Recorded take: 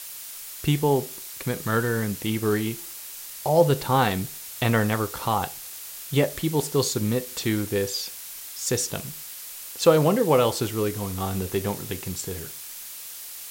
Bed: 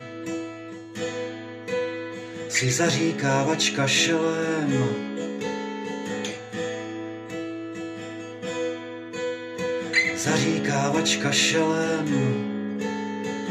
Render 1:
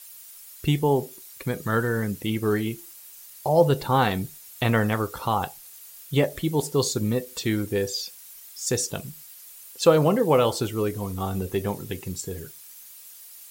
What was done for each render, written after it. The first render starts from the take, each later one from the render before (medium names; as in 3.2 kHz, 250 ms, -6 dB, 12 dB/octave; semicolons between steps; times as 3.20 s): noise reduction 11 dB, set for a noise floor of -39 dBFS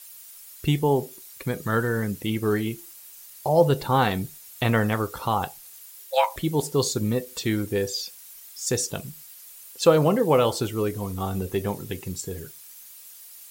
5.83–6.36 s: frequency shift +390 Hz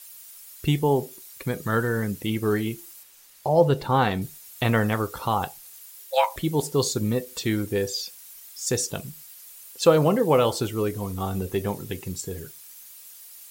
3.03–4.22 s: treble shelf 6.2 kHz -9 dB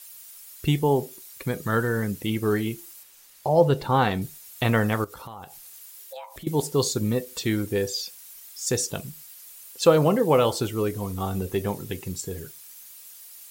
5.04–6.47 s: compression 5:1, threshold -38 dBFS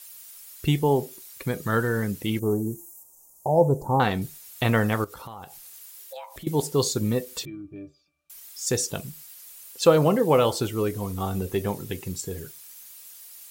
2.39–4.00 s: elliptic band-stop 920–6700 Hz, stop band 60 dB; 7.45–8.30 s: pitch-class resonator D, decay 0.19 s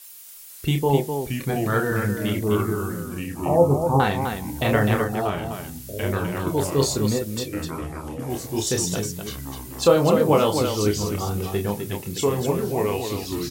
ever faster or slower copies 499 ms, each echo -3 st, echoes 3, each echo -6 dB; loudspeakers at several distances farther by 10 m -5 dB, 87 m -6 dB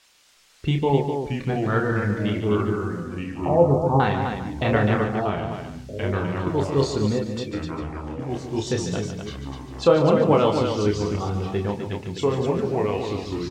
distance through air 140 m; on a send: delay 145 ms -9.5 dB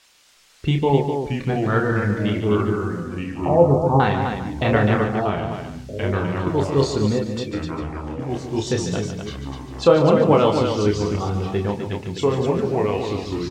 trim +2.5 dB